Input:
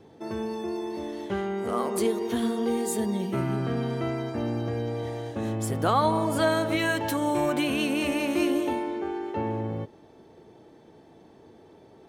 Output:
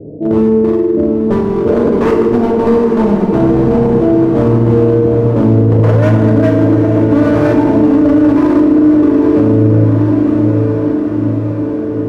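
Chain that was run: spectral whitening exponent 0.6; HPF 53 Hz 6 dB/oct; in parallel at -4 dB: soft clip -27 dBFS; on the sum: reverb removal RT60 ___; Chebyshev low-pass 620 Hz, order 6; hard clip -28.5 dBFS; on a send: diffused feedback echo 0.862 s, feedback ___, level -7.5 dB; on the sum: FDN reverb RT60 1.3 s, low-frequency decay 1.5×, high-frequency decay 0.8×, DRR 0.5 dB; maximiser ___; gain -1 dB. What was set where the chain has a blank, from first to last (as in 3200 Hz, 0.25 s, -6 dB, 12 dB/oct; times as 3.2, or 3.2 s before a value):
0.8 s, 68%, +19.5 dB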